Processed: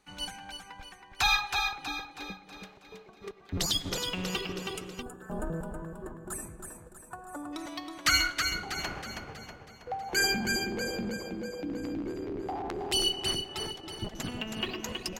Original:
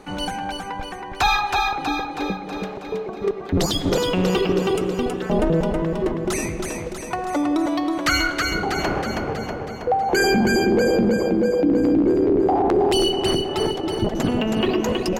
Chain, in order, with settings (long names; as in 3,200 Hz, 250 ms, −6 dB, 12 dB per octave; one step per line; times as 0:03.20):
gain on a spectral selection 0:05.02–0:07.53, 1,800–6,900 Hz −20 dB
guitar amp tone stack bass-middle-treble 5-5-5
expander for the loud parts 1.5 to 1, over −56 dBFS
level +6 dB